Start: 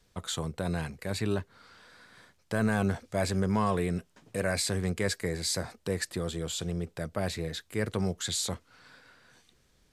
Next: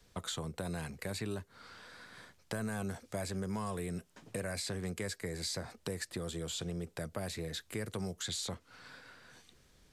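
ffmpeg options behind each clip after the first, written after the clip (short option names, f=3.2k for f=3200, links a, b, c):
-filter_complex "[0:a]acrossover=split=150|6100[a][b][c];[a]acompressor=threshold=-48dB:ratio=4[d];[b]acompressor=threshold=-41dB:ratio=4[e];[c]acompressor=threshold=-49dB:ratio=4[f];[d][e][f]amix=inputs=3:normalize=0,volume=2dB"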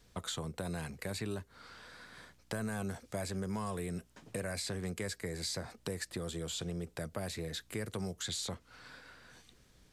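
-af "aeval=exprs='val(0)+0.000355*(sin(2*PI*60*n/s)+sin(2*PI*2*60*n/s)/2+sin(2*PI*3*60*n/s)/3+sin(2*PI*4*60*n/s)/4+sin(2*PI*5*60*n/s)/5)':c=same"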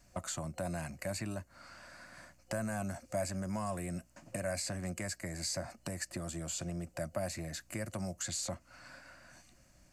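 -af "superequalizer=7b=0.251:8b=2:13b=0.316:15b=1.58"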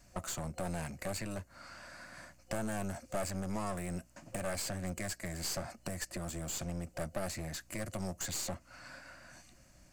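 -af "aeval=exprs='clip(val(0),-1,0.00596)':c=same,volume=2.5dB"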